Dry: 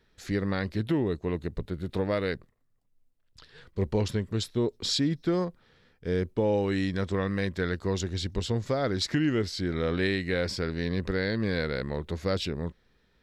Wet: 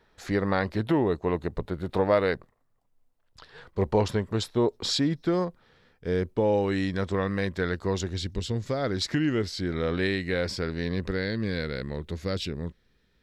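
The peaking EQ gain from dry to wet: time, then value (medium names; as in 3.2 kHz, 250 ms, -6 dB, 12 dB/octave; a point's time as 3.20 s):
peaking EQ 850 Hz 1.7 oct
4.81 s +10.5 dB
5.33 s +4 dB
8.07 s +4 dB
8.43 s -7 dB
8.96 s +1.5 dB
10.95 s +1.5 dB
11.41 s -5 dB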